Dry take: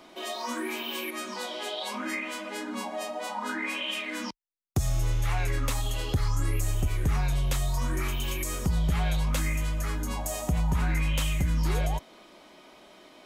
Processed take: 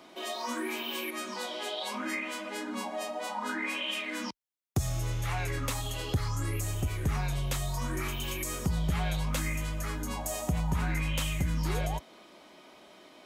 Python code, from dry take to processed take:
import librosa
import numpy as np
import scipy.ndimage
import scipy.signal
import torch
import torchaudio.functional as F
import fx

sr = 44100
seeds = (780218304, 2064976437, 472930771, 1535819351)

y = scipy.signal.sosfilt(scipy.signal.butter(2, 61.0, 'highpass', fs=sr, output='sos'), x)
y = y * librosa.db_to_amplitude(-1.5)